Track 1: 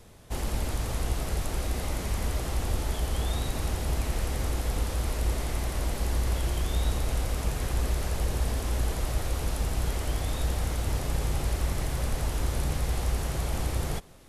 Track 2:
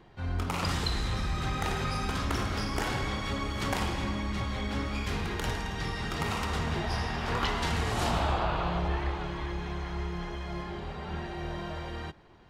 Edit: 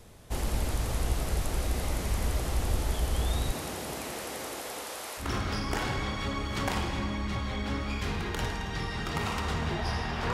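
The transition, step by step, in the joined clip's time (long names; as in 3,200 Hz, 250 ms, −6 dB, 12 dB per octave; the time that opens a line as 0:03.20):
track 1
0:03.52–0:05.32: high-pass filter 150 Hz → 710 Hz
0:05.24: continue with track 2 from 0:02.29, crossfade 0.16 s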